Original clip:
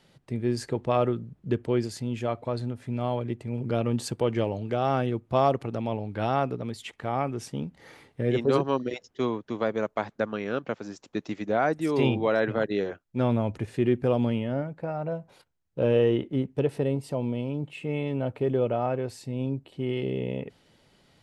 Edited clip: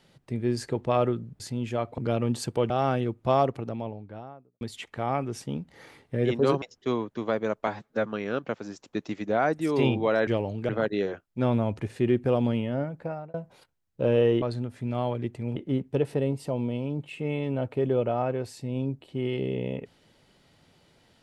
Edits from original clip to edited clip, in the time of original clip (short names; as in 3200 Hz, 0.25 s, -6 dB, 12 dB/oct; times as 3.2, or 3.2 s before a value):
1.4–1.9 cut
2.48–3.62 move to 16.2
4.34–4.76 move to 12.47
5.33–6.67 studio fade out
8.68–8.95 cut
10–10.26 stretch 1.5×
14.84–15.12 fade out